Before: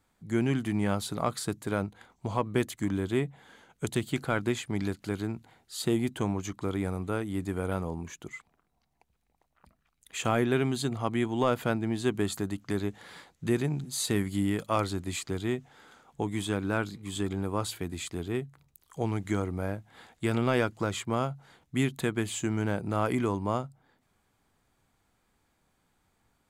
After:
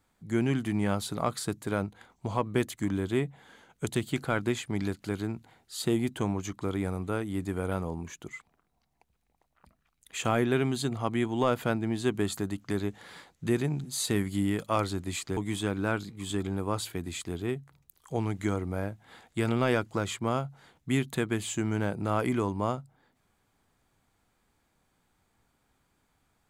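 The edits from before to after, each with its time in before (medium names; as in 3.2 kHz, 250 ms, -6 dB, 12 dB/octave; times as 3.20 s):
15.37–16.23 s: delete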